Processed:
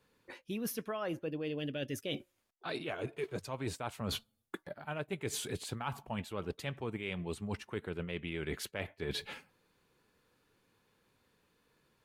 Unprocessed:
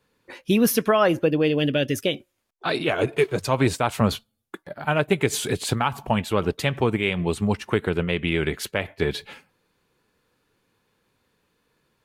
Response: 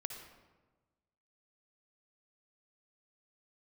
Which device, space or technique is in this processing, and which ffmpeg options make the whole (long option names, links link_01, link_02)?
compression on the reversed sound: -af "areverse,acompressor=threshold=-31dB:ratio=12,areverse,volume=-3.5dB"